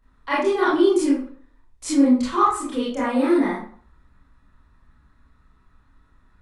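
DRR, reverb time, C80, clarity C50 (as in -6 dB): -9.5 dB, 0.50 s, 7.5 dB, 1.0 dB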